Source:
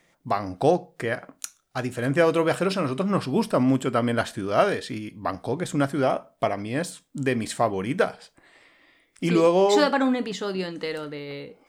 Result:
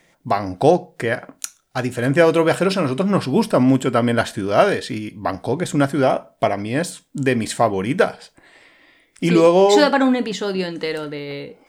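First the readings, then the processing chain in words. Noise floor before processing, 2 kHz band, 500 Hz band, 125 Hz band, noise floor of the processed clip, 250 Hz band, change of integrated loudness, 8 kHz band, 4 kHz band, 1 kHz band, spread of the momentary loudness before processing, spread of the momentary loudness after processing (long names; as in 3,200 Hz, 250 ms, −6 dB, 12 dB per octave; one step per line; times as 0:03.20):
−67 dBFS, +6.0 dB, +6.0 dB, +6.0 dB, −61 dBFS, +6.0 dB, +6.0 dB, +6.0 dB, +6.0 dB, +5.5 dB, 12 LU, 12 LU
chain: notch filter 1,200 Hz, Q 11
level +6 dB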